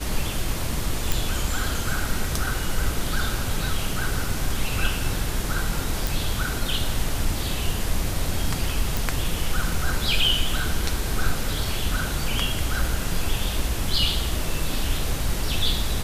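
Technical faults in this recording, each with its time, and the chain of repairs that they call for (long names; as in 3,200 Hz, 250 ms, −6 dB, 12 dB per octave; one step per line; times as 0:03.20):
0:01.12: click
0:06.07: click
0:08.97: click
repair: click removal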